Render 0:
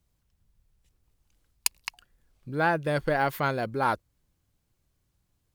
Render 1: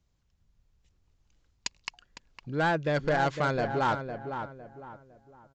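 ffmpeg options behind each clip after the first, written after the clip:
-filter_complex "[0:a]aresample=16000,asoftclip=type=hard:threshold=-21dB,aresample=44100,asplit=2[a][b];[b]adelay=507,lowpass=f=1.7k:p=1,volume=-7.5dB,asplit=2[c][d];[d]adelay=507,lowpass=f=1.7k:p=1,volume=0.35,asplit=2[e][f];[f]adelay=507,lowpass=f=1.7k:p=1,volume=0.35,asplit=2[g][h];[h]adelay=507,lowpass=f=1.7k:p=1,volume=0.35[i];[a][c][e][g][i]amix=inputs=5:normalize=0"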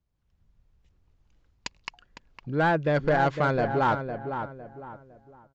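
-af "lowpass=f=2.2k:p=1,dynaudnorm=f=100:g=5:m=10dB,volume=-6dB"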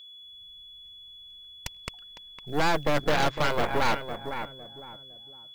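-af "aeval=exprs='0.211*(cos(1*acos(clip(val(0)/0.211,-1,1)))-cos(1*PI/2))+0.0944*(cos(6*acos(clip(val(0)/0.211,-1,1)))-cos(6*PI/2))+0.0168*(cos(8*acos(clip(val(0)/0.211,-1,1)))-cos(8*PI/2))':c=same,aeval=exprs='val(0)+0.00891*sin(2*PI*3400*n/s)':c=same,acrusher=bits=7:mode=log:mix=0:aa=0.000001,volume=-4dB"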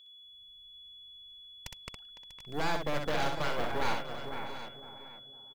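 -af "aecho=1:1:63|643|740:0.562|0.188|0.237,volume=-8.5dB"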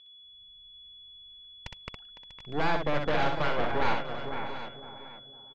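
-af "lowpass=3.3k,volume=4.5dB"

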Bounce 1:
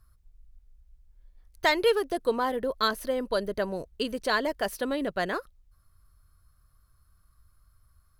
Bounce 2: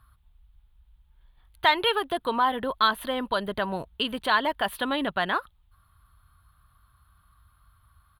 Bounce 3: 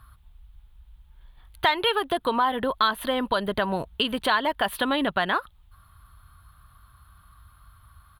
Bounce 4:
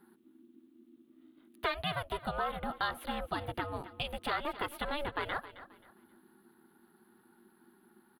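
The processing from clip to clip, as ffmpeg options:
-filter_complex "[0:a]firequalizer=gain_entry='entry(180,0);entry(490,-7);entry(860,8);entry(2100,2);entry(3400,10);entry(5500,-18);entry(9800,-3)':delay=0.05:min_phase=1,asplit=2[a][b];[b]alimiter=limit=-23.5dB:level=0:latency=1:release=135,volume=2.5dB[c];[a][c]amix=inputs=2:normalize=0,highpass=44,volume=-3dB"
-af "acompressor=threshold=-32dB:ratio=2,volume=7.5dB"
-filter_complex "[0:a]acrossover=split=4900[a][b];[a]aeval=exprs='val(0)*sin(2*PI*290*n/s)':c=same[c];[b]asoftclip=type=tanh:threshold=-39.5dB[d];[c][d]amix=inputs=2:normalize=0,aecho=1:1:266|532|798:0.178|0.0516|0.015,volume=-8.5dB"

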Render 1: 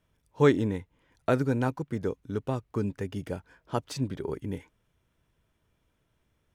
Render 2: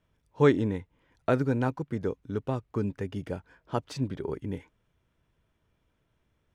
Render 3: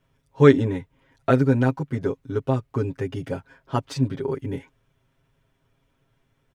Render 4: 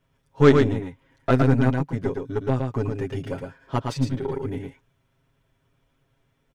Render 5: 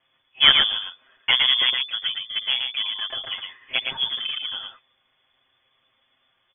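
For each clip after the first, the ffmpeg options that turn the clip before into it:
-af "highshelf=f=7.2k:g=-10.5"
-af "aecho=1:1:7.4:0.94,volume=3dB"
-af "aeval=exprs='0.891*(cos(1*acos(clip(val(0)/0.891,-1,1)))-cos(1*PI/2))+0.0631*(cos(8*acos(clip(val(0)/0.891,-1,1)))-cos(8*PI/2))':c=same,aecho=1:1:113:0.596,volume=-1.5dB"
-af "crystalizer=i=9.5:c=0,lowpass=f=3k:t=q:w=0.5098,lowpass=f=3k:t=q:w=0.6013,lowpass=f=3k:t=q:w=0.9,lowpass=f=3k:t=q:w=2.563,afreqshift=-3500,volume=-2.5dB"

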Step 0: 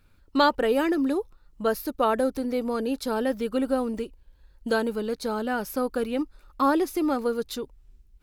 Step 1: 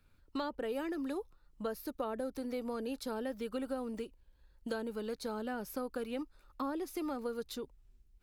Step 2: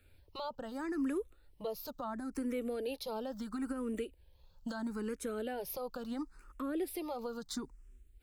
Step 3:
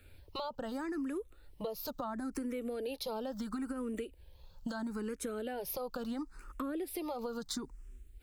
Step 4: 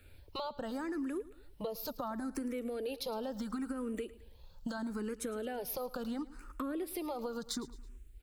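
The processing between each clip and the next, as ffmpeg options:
-filter_complex "[0:a]acrossover=split=99|590[a][b][c];[a]acompressor=threshold=-51dB:ratio=4[d];[b]acompressor=threshold=-31dB:ratio=4[e];[c]acompressor=threshold=-35dB:ratio=4[f];[d][e][f]amix=inputs=3:normalize=0,volume=-7dB"
-filter_complex "[0:a]equalizer=f=8.1k:t=o:w=0.34:g=4,alimiter=level_in=10dB:limit=-24dB:level=0:latency=1:release=180,volume=-10dB,asplit=2[a][b];[b]afreqshift=0.74[c];[a][c]amix=inputs=2:normalize=1,volume=7dB"
-af "acompressor=threshold=-42dB:ratio=6,volume=6.5dB"
-af "aecho=1:1:109|218|327:0.126|0.0529|0.0222"

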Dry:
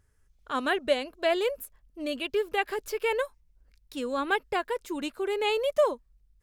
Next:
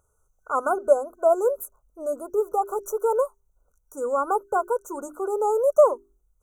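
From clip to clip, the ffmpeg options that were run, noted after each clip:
-af "afftfilt=real='re*(1-between(b*sr/4096,1500,5800))':imag='im*(1-between(b*sr/4096,1500,5800))':win_size=4096:overlap=0.75,lowshelf=f=370:t=q:w=1.5:g=-8.5,bandreject=f=50:t=h:w=6,bandreject=f=100:t=h:w=6,bandreject=f=150:t=h:w=6,bandreject=f=200:t=h:w=6,bandreject=f=250:t=h:w=6,bandreject=f=300:t=h:w=6,bandreject=f=350:t=h:w=6,bandreject=f=400:t=h:w=6,volume=5.5dB"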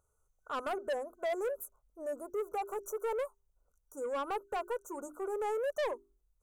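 -af "asoftclip=type=tanh:threshold=-22dB,volume=-8dB"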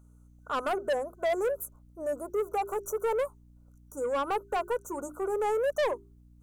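-af "aeval=exprs='val(0)+0.000891*(sin(2*PI*60*n/s)+sin(2*PI*2*60*n/s)/2+sin(2*PI*3*60*n/s)/3+sin(2*PI*4*60*n/s)/4+sin(2*PI*5*60*n/s)/5)':c=same,volume=6dB"

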